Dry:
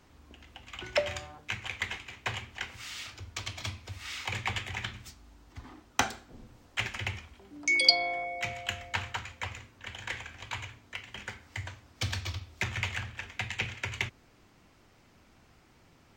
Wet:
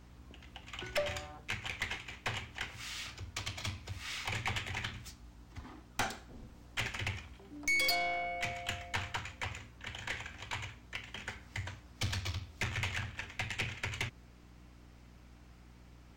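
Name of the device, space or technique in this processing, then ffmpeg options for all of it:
valve amplifier with mains hum: -af "aeval=exprs='(tanh(22.4*val(0)+0.4)-tanh(0.4))/22.4':c=same,aeval=exprs='val(0)+0.00158*(sin(2*PI*60*n/s)+sin(2*PI*2*60*n/s)/2+sin(2*PI*3*60*n/s)/3+sin(2*PI*4*60*n/s)/4+sin(2*PI*5*60*n/s)/5)':c=same"

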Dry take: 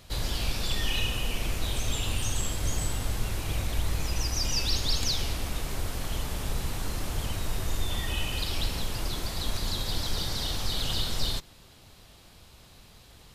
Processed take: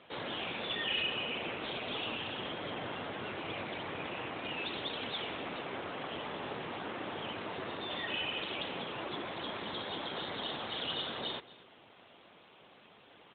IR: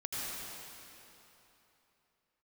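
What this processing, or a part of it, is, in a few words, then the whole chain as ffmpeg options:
telephone: -filter_complex "[0:a]aecho=1:1:244:0.0944,asettb=1/sr,asplit=3[s0][s1][s2];[s0]atrim=end=1.844[s3];[s1]atrim=start=1.84:end=4.01,asetpts=PTS-STARTPTS,afade=t=in:d=0.004:c=qsin,afade=t=out:st=2.166:d=0.004:c=qsin,adynamicequalizer=threshold=0.00224:dfrequency=9500:dqfactor=1.8:tfrequency=9500:tqfactor=1.8:attack=5:release=100:ratio=0.375:range=1.5:mode=cutabove:tftype=bell[s4];[s2]atrim=start=4.006[s5];[s3][s4]acrossfade=d=0.004:c1=hsin:c2=qsin[s6];[s6][s5]acrossfade=d=0.004:c1=qsin:c2=hsin,highpass=290,lowpass=3500,asoftclip=type=tanh:threshold=0.0668,volume=1.33" -ar 8000 -c:a libopencore_amrnb -b:a 12200

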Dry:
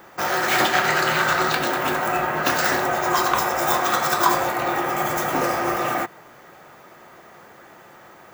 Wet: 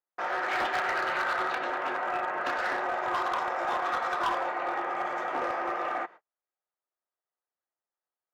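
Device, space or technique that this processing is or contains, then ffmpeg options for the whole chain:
walkie-talkie: -af "highpass=460,lowpass=2200,asoftclip=type=hard:threshold=0.141,agate=range=0.00631:threshold=0.0112:ratio=16:detection=peak,volume=0.473"

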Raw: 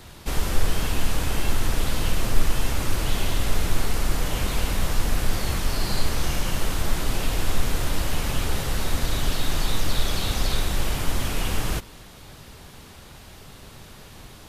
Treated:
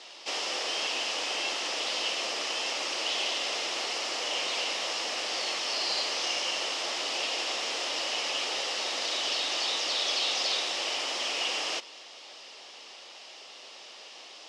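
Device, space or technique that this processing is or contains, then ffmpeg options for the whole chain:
phone speaker on a table: -af "highpass=f=420:w=0.5412,highpass=f=420:w=1.3066,equalizer=f=420:t=q:w=4:g=-5,equalizer=f=990:t=q:w=4:g=-3,equalizer=f=1500:t=q:w=4:g=-8,equalizer=f=2900:t=q:w=4:g=7,equalizer=f=5200:t=q:w=4:g=8,lowpass=f=6800:w=0.5412,lowpass=f=6800:w=1.3066"

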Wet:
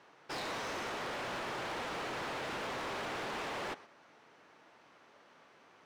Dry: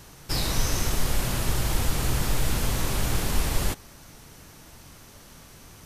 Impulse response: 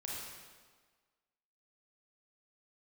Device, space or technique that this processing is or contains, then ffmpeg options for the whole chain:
walkie-talkie: -af "highpass=430,lowpass=2300,asoftclip=type=hard:threshold=0.015,agate=range=0.501:threshold=0.00251:ratio=16:detection=peak"

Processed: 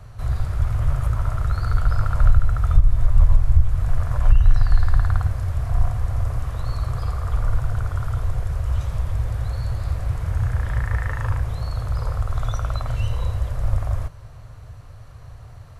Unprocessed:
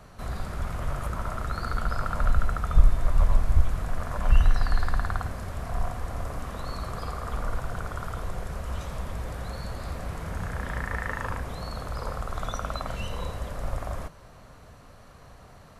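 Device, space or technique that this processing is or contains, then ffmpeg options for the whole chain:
car stereo with a boomy subwoofer: -af "lowshelf=f=150:t=q:w=3:g=9,alimiter=limit=0.596:level=0:latency=1:release=272"

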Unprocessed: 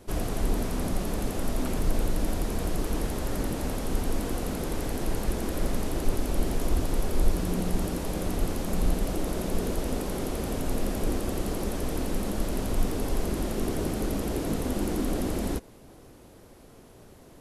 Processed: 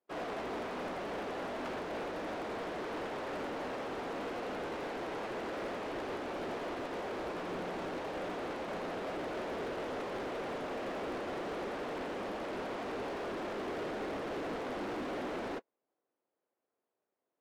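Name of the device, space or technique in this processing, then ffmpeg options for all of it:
walkie-talkie: -af "highpass=460,lowpass=2200,asoftclip=type=hard:threshold=0.0106,agate=range=0.0158:threshold=0.00708:ratio=16:detection=peak,volume=1.78"

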